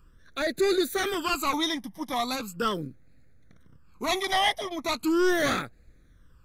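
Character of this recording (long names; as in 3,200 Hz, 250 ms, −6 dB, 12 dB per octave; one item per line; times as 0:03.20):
phaser sweep stages 12, 0.39 Hz, lowest notch 440–1,000 Hz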